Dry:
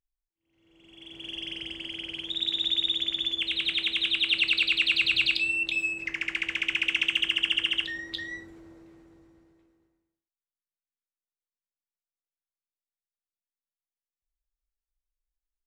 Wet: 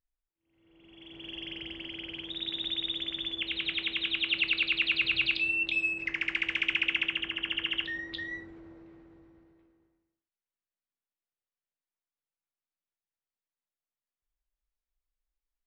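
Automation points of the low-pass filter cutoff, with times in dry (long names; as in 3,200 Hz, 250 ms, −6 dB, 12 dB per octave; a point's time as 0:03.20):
0:05.20 2,600 Hz
0:05.90 4,100 Hz
0:06.64 4,100 Hz
0:07.31 1,700 Hz
0:07.96 3,000 Hz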